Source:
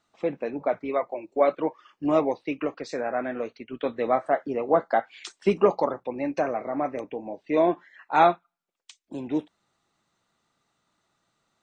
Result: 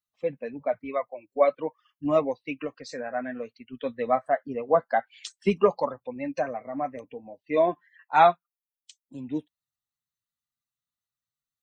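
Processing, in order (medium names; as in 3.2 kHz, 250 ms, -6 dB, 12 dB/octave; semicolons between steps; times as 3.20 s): expander on every frequency bin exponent 1.5; peaking EQ 340 Hz -9.5 dB 0.32 oct; trim +2.5 dB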